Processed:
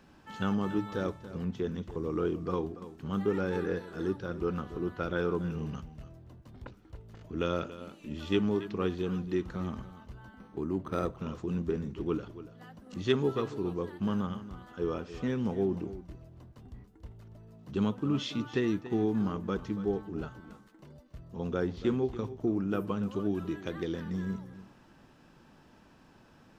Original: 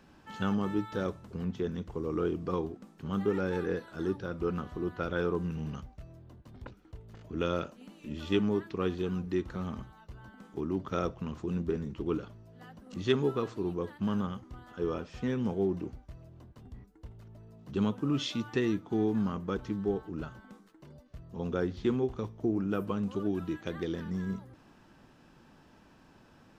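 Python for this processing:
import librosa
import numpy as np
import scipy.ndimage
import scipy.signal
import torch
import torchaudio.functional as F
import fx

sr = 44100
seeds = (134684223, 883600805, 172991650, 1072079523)

y = fx.high_shelf(x, sr, hz=4500.0, db=-5.5, at=(17.94, 18.68))
y = y + 10.0 ** (-14.5 / 20.0) * np.pad(y, (int(283 * sr / 1000.0), 0))[:len(y)]
y = fx.resample_linear(y, sr, factor=6, at=(10.39, 11.17))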